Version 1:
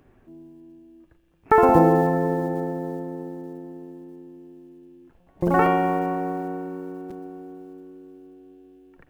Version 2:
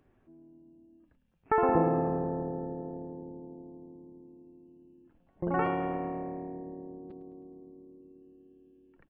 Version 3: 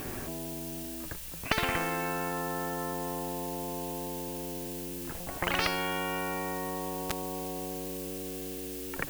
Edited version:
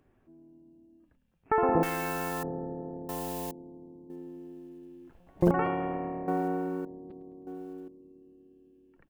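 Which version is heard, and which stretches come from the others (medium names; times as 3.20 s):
2
1.83–2.43 s: from 3
3.09–3.51 s: from 3
4.10–5.51 s: from 1
6.28–6.85 s: from 1
7.47–7.88 s: from 1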